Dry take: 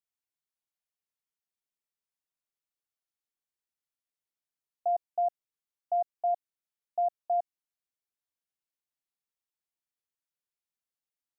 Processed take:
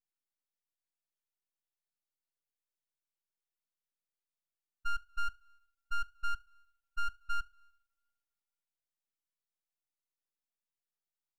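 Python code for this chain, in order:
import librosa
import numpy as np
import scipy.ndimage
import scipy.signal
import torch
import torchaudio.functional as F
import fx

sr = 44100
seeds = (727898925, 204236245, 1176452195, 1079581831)

y = fx.spec_expand(x, sr, power=2.6)
y = fx.rev_double_slope(y, sr, seeds[0], early_s=0.86, late_s=2.5, knee_db=-26, drr_db=17.5)
y = np.abs(y)
y = F.gain(torch.from_numpy(y), -2.0).numpy()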